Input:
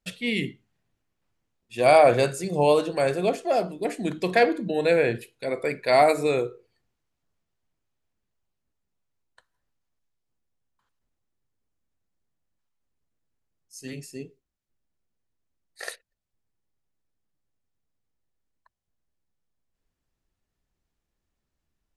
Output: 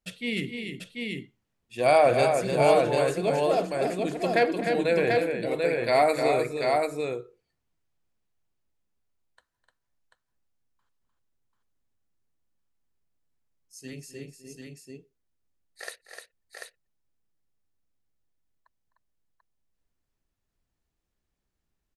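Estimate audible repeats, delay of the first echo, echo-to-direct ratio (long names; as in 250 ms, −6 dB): 3, 256 ms, −1.5 dB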